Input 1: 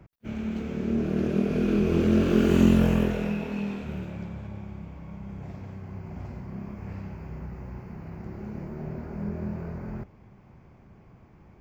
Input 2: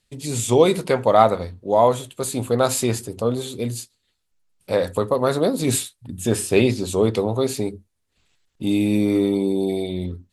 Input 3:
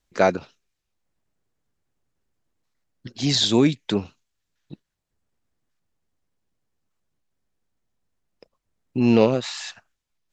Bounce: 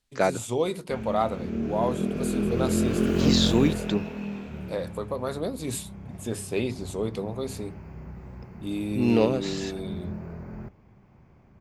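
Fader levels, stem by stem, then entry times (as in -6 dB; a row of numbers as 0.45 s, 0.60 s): -3.0 dB, -11.0 dB, -5.0 dB; 0.65 s, 0.00 s, 0.00 s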